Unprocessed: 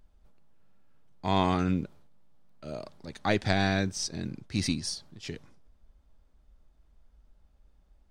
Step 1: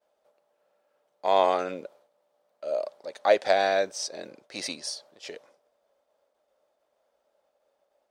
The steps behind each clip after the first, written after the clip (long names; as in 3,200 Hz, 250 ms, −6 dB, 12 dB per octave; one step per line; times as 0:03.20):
downward expander −59 dBFS
high-pass with resonance 560 Hz, resonance Q 4.9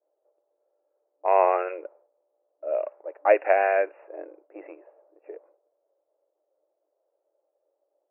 brick-wall band-pass 300–2,800 Hz
low-pass that shuts in the quiet parts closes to 480 Hz, open at −21 dBFS
level +2 dB